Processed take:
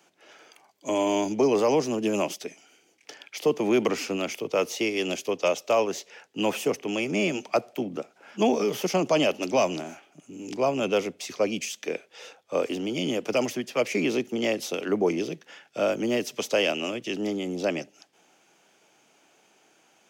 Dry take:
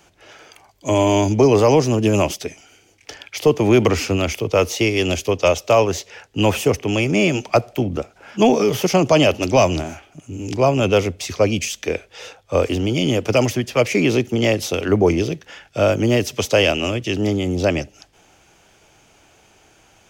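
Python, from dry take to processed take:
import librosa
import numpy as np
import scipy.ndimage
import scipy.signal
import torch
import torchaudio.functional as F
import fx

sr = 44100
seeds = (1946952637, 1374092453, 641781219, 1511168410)

y = scipy.signal.sosfilt(scipy.signal.butter(4, 180.0, 'highpass', fs=sr, output='sos'), x)
y = y * librosa.db_to_amplitude(-8.0)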